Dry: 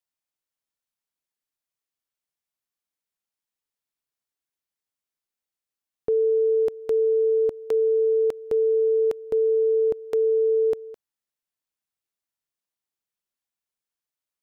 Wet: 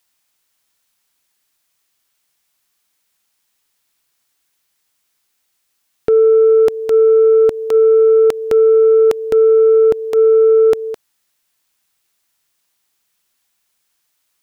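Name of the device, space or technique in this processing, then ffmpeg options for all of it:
mastering chain: -af "equalizer=frequency=520:width_type=o:width=0.55:gain=-2.5,acompressor=threshold=-28dB:ratio=2,asoftclip=type=tanh:threshold=-19.5dB,tiltshelf=frequency=970:gain=-3,alimiter=level_in=25dB:limit=-1dB:release=50:level=0:latency=1,volume=-5.5dB"

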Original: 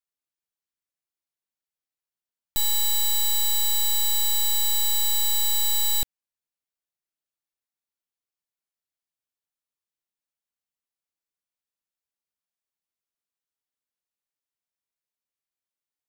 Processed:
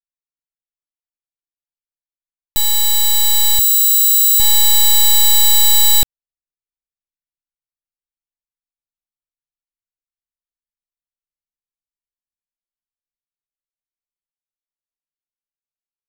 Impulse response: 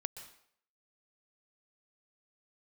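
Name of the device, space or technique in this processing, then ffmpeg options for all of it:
voice memo with heavy noise removal: -filter_complex "[0:a]asettb=1/sr,asplit=3[link_01][link_02][link_03];[link_01]atrim=end=3.594[link_04];[link_02]atrim=start=3.59:end=4.4,asetpts=PTS-STARTPTS,afade=type=in:duration=0.004:curve=qsin,afade=type=out:start_time=0.806:duration=0.004:curve=qsin,aderivative[link_05];[link_03]atrim=start=4.396[link_06];[link_04][link_05]acrossfade=duration=0.004:curve1=hsin:curve2=qsin[link_07];[link_07][link_06]acrossfade=duration=0.004:curve1=qsin:curve2=hsin,anlmdn=6.31,dynaudnorm=framelen=380:gausssize=17:maxgain=6.5dB,volume=5.5dB"

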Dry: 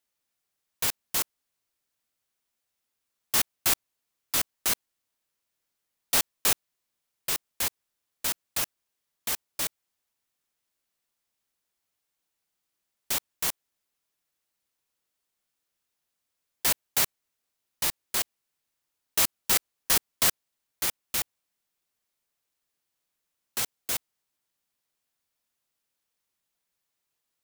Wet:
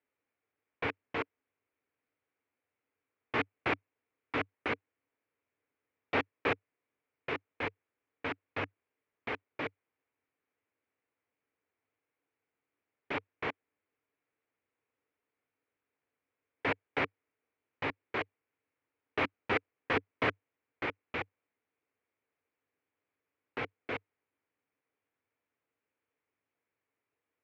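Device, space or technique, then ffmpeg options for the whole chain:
bass cabinet: -af "highpass=84,equalizer=frequency=98:width_type=q:width=4:gain=7,equalizer=frequency=190:width_type=q:width=4:gain=-6,equalizer=frequency=280:width_type=q:width=4:gain=8,equalizer=frequency=450:width_type=q:width=4:gain=9,equalizer=frequency=2300:width_type=q:width=4:gain=5,lowpass=frequency=2300:width=0.5412,lowpass=frequency=2300:width=1.3066"

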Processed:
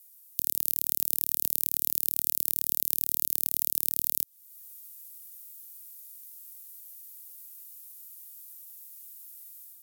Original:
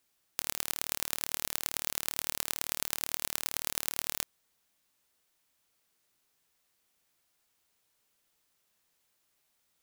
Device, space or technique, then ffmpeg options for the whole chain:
FM broadcast chain: -filter_complex "[0:a]highpass=69,dynaudnorm=framelen=100:gausssize=5:maxgain=8dB,acrossover=split=180|450|2300|6200[link_01][link_02][link_03][link_04][link_05];[link_01]acompressor=threshold=-58dB:ratio=4[link_06];[link_02]acompressor=threshold=-54dB:ratio=4[link_07];[link_03]acompressor=threshold=-49dB:ratio=4[link_08];[link_04]acompressor=threshold=-42dB:ratio=4[link_09];[link_05]acompressor=threshold=-40dB:ratio=4[link_10];[link_06][link_07][link_08][link_09][link_10]amix=inputs=5:normalize=0,aemphasis=mode=production:type=75fm,alimiter=limit=-1dB:level=0:latency=1:release=168,asoftclip=type=hard:threshold=-4dB,lowpass=frequency=15000:width=0.5412,lowpass=frequency=15000:width=1.3066,aemphasis=mode=production:type=75fm,volume=-9.5dB"

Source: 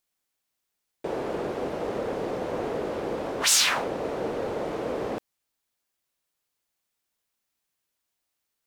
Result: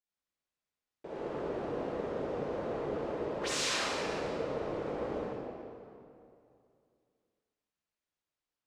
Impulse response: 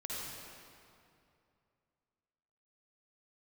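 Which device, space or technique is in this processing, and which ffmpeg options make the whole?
swimming-pool hall: -filter_complex "[0:a]lowpass=8500[link_01];[1:a]atrim=start_sample=2205[link_02];[link_01][link_02]afir=irnorm=-1:irlink=0,highshelf=frequency=4200:gain=-6.5,volume=-8dB"

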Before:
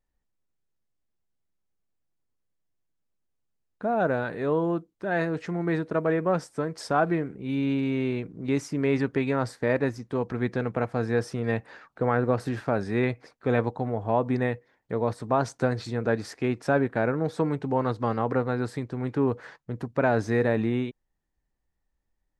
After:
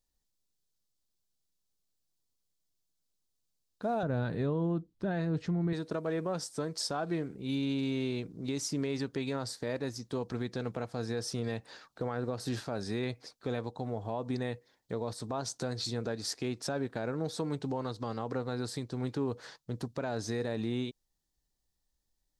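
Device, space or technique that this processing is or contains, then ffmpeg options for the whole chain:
over-bright horn tweeter: -filter_complex "[0:a]asettb=1/sr,asplit=3[link_01][link_02][link_03];[link_01]atrim=end=4.034[link_04];[link_02]atrim=start=4.03:end=5.73,asetpts=PTS-STARTPTS,afade=type=in:duration=0.004:curve=qsin,afade=type=out:start_time=1.696:duration=0.004:curve=qsin,bass=frequency=250:gain=13,treble=frequency=4000:gain=-11[link_05];[link_03]atrim=start=5.726[link_06];[link_04][link_05]acrossfade=duration=0.004:curve1=hsin:curve2=qsin[link_07];[link_07][link_06]acrossfade=duration=0.004:curve1=qsin:curve2=hsin,highshelf=frequency=3000:width_type=q:width=1.5:gain=10.5,alimiter=limit=-20dB:level=0:latency=1:release=187,volume=-4dB"

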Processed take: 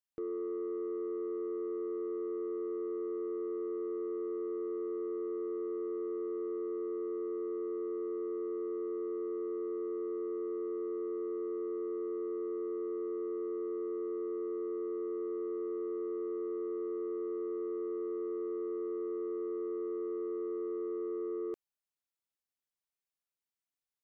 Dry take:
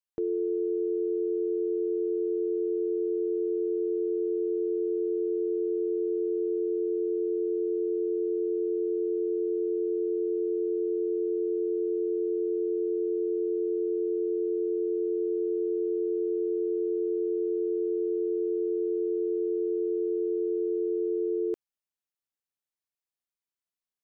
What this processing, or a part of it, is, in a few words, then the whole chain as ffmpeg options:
soft clipper into limiter: -af "asoftclip=type=tanh:threshold=-25dB,alimiter=level_in=5.5dB:limit=-24dB:level=0:latency=1:release=55,volume=-5.5dB,volume=-3dB"

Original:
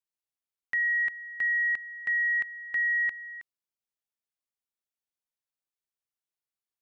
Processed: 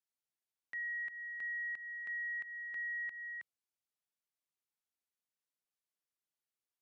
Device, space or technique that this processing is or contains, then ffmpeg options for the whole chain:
podcast mastering chain: -af "highpass=90,acompressor=threshold=-32dB:ratio=6,alimiter=level_in=9.5dB:limit=-24dB:level=0:latency=1,volume=-9.5dB,volume=-2.5dB" -ar 32000 -c:a libmp3lame -b:a 128k

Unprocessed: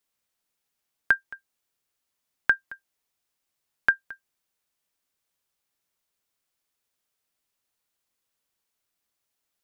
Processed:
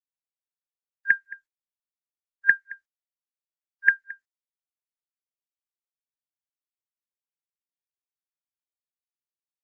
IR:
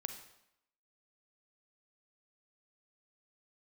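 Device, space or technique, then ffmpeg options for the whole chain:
video call: -filter_complex "[0:a]asettb=1/sr,asplit=3[link_01][link_02][link_03];[link_01]atrim=end=2.724[link_04];[link_02]atrim=start=2.72:end=3.94,asetpts=PTS-STARTPTS,afade=type=in:duration=0.004:curve=qsin,afade=type=out:start_time=1.216:duration=0.004:curve=qsin,highpass=frequency=140:poles=1[link_05];[link_03]atrim=start=3.936[link_06];[link_04][link_05]acrossfade=duration=0.004:curve1=hsin:curve2=qsin[link_07];[link_07][link_06]acrossfade=duration=0.004:curve1=qsin:curve2=hsin,afftfilt=real='re*(1-between(b*sr/4096,580,1600))':imag='im*(1-between(b*sr/4096,580,1600))':win_size=4096:overlap=0.75,afftdn=noise_reduction=27:noise_floor=-54,highpass=frequency=130:width=0.5412,highpass=frequency=130:width=1.3066,firequalizer=gain_entry='entry(130,0);entry(190,-15);entry(320,-6);entry(460,-14);entry(1100,-7);entry(1800,7);entry(3600,-27)':delay=0.05:min_phase=1,dynaudnorm=framelen=170:gausssize=13:maxgain=16dB,agate=range=-42dB:threshold=-50dB:ratio=16:detection=peak,volume=-1dB" -ar 48000 -c:a libopus -b:a 12k

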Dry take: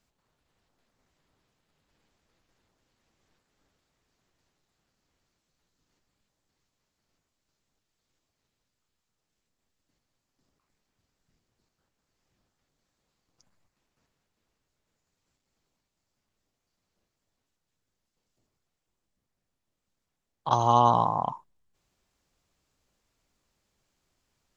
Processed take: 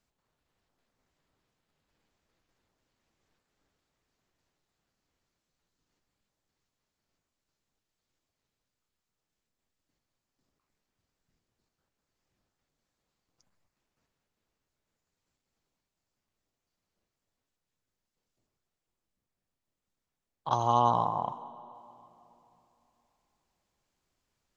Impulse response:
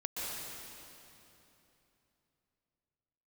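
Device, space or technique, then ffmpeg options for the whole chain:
filtered reverb send: -filter_complex "[0:a]asplit=2[link_01][link_02];[link_02]highpass=240,lowpass=3600[link_03];[1:a]atrim=start_sample=2205[link_04];[link_03][link_04]afir=irnorm=-1:irlink=0,volume=-17dB[link_05];[link_01][link_05]amix=inputs=2:normalize=0,volume=-5dB"

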